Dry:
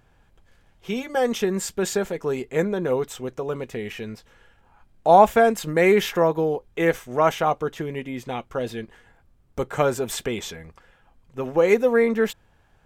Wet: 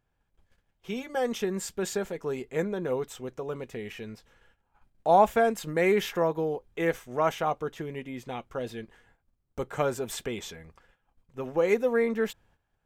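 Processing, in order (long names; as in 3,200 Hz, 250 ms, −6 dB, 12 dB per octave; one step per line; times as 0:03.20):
noise gate −54 dBFS, range −11 dB
level −6.5 dB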